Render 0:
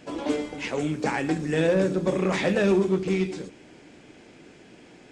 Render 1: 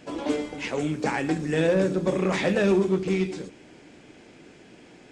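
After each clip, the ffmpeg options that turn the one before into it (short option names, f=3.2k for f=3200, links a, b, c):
-af anull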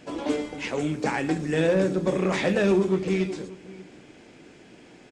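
-filter_complex "[0:a]asplit=2[a][b];[b]adelay=583.1,volume=-19dB,highshelf=f=4k:g=-13.1[c];[a][c]amix=inputs=2:normalize=0"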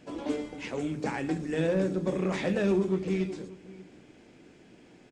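-af "lowshelf=f=330:g=5.5,bandreject=f=50:t=h:w=6,bandreject=f=100:t=h:w=6,bandreject=f=150:t=h:w=6,volume=-7.5dB"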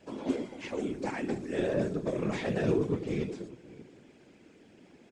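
-af "lowshelf=f=160:t=q:w=1.5:g=-8,afftfilt=real='hypot(re,im)*cos(2*PI*random(0))':imag='hypot(re,im)*sin(2*PI*random(1))':win_size=512:overlap=0.75,volume=3dB"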